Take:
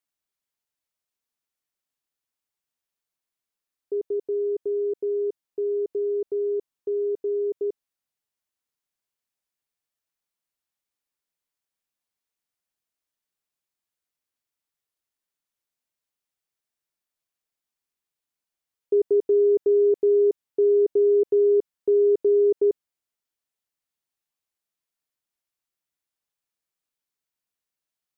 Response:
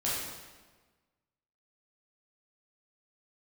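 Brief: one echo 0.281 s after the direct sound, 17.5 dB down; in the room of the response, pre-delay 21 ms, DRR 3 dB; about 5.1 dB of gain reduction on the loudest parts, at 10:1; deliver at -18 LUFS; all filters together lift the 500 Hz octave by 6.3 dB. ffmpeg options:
-filter_complex "[0:a]equalizer=f=500:t=o:g=8.5,acompressor=threshold=-15dB:ratio=10,aecho=1:1:281:0.133,asplit=2[a][b];[1:a]atrim=start_sample=2205,adelay=21[c];[b][c]afir=irnorm=-1:irlink=0,volume=-10.5dB[d];[a][d]amix=inputs=2:normalize=0,volume=2.5dB"

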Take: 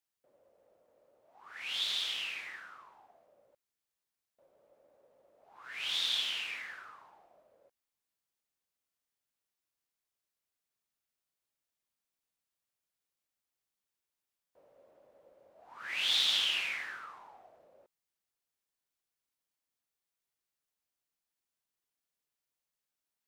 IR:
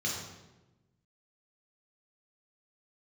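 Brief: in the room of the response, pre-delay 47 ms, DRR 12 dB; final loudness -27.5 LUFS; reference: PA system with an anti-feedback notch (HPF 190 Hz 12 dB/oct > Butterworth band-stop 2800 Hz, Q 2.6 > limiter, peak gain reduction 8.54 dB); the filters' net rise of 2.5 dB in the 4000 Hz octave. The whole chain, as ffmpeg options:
-filter_complex "[0:a]equalizer=f=4k:t=o:g=6,asplit=2[a][b];[1:a]atrim=start_sample=2205,adelay=47[c];[b][c]afir=irnorm=-1:irlink=0,volume=-17.5dB[d];[a][d]amix=inputs=2:normalize=0,highpass=190,asuperstop=centerf=2800:order=8:qfactor=2.6,volume=5.5dB,alimiter=limit=-16.5dB:level=0:latency=1"

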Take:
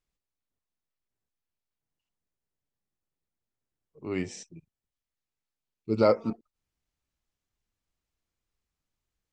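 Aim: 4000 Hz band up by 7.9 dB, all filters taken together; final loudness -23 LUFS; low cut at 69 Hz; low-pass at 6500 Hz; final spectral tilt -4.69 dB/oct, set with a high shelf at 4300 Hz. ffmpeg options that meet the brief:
-af "highpass=69,lowpass=6.5k,equalizer=f=4k:t=o:g=7,highshelf=f=4.3k:g=6,volume=5dB"

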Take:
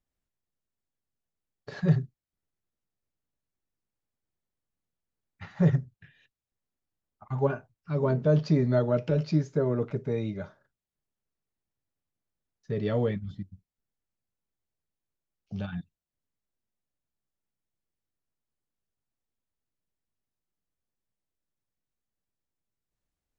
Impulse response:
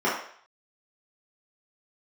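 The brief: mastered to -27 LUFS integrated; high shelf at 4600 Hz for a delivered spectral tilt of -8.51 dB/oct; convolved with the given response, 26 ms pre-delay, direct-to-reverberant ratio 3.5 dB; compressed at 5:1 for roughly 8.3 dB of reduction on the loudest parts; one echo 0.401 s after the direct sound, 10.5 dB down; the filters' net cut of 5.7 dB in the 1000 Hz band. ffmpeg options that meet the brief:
-filter_complex "[0:a]equalizer=f=1k:t=o:g=-8,highshelf=f=4.6k:g=4.5,acompressor=threshold=-26dB:ratio=5,aecho=1:1:401:0.299,asplit=2[a][b];[1:a]atrim=start_sample=2205,adelay=26[c];[b][c]afir=irnorm=-1:irlink=0,volume=-19.5dB[d];[a][d]amix=inputs=2:normalize=0,volume=5dB"

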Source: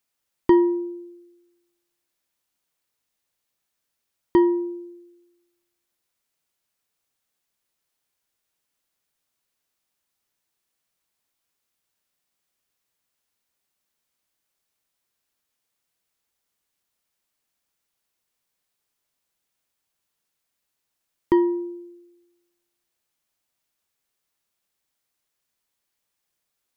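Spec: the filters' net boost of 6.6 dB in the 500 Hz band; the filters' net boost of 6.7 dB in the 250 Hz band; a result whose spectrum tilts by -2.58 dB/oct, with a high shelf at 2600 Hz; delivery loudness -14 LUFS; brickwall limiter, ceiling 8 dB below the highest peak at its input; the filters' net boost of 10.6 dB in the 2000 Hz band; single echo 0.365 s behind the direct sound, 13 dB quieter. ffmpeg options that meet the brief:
-af "equalizer=f=250:t=o:g=8,equalizer=f=500:t=o:g=4.5,equalizer=f=2k:t=o:g=7.5,highshelf=f=2.6k:g=9,alimiter=limit=-7dB:level=0:latency=1,aecho=1:1:365:0.224,volume=5.5dB"

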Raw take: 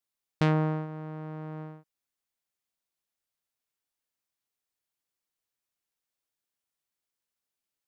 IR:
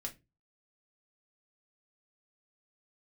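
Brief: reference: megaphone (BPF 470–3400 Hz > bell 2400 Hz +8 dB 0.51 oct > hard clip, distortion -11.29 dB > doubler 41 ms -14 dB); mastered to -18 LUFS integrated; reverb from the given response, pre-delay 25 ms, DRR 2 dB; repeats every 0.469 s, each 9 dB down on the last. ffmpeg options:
-filter_complex "[0:a]aecho=1:1:469|938|1407|1876:0.355|0.124|0.0435|0.0152,asplit=2[a][b];[1:a]atrim=start_sample=2205,adelay=25[c];[b][c]afir=irnorm=-1:irlink=0,volume=-0.5dB[d];[a][d]amix=inputs=2:normalize=0,highpass=470,lowpass=3.4k,equalizer=f=2.4k:t=o:w=0.51:g=8,asoftclip=type=hard:threshold=-23dB,asplit=2[e][f];[f]adelay=41,volume=-14dB[g];[e][g]amix=inputs=2:normalize=0,volume=18.5dB"

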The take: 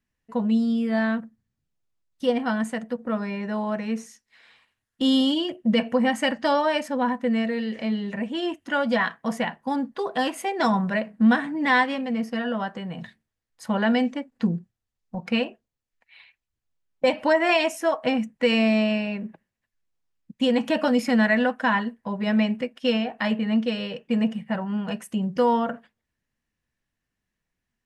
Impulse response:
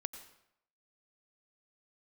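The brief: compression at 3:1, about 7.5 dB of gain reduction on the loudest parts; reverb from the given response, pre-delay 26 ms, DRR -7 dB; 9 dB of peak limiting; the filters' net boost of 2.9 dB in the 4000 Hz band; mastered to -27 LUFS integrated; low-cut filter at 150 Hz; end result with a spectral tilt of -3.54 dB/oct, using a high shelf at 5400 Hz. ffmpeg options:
-filter_complex "[0:a]highpass=150,equalizer=f=4k:t=o:g=6,highshelf=f=5.4k:g=-4,acompressor=threshold=-25dB:ratio=3,alimiter=limit=-22.5dB:level=0:latency=1,asplit=2[a][b];[1:a]atrim=start_sample=2205,adelay=26[c];[b][c]afir=irnorm=-1:irlink=0,volume=8.5dB[d];[a][d]amix=inputs=2:normalize=0,volume=-3.5dB"

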